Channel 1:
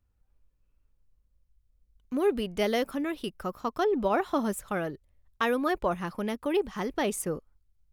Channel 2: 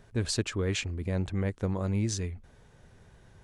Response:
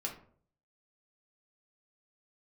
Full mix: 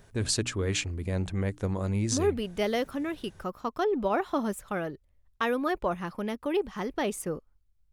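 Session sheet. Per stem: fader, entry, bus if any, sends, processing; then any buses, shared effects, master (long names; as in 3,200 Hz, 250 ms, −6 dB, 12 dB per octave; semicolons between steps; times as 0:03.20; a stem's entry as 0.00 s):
−1.0 dB, 0.00 s, no send, high-shelf EQ 7,400 Hz −4.5 dB
+0.5 dB, 0.00 s, no send, high-shelf EQ 7,200 Hz +9 dB; mains-hum notches 60/120/180/240/300 Hz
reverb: not used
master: no processing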